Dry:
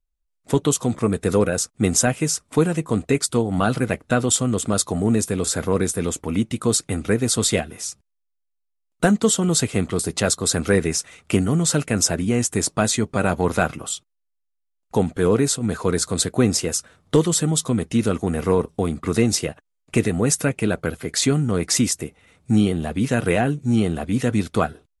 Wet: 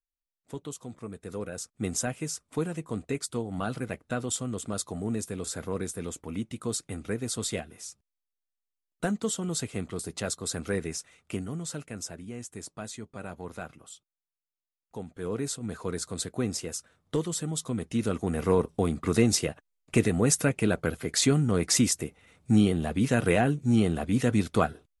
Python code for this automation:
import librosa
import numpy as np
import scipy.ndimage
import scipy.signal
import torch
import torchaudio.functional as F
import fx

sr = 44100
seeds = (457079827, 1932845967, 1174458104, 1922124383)

y = fx.gain(x, sr, db=fx.line((1.27, -19.5), (1.78, -12.0), (10.91, -12.0), (12.2, -19.5), (15.05, -19.5), (15.47, -12.0), (17.46, -12.0), (18.65, -4.0)))